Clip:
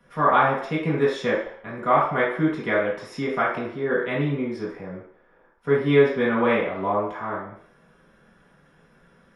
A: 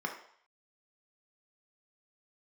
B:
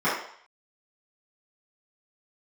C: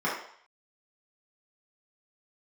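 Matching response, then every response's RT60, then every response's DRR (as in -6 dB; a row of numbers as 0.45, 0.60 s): C; 0.60, 0.60, 0.60 s; 2.0, -13.0, -7.5 dB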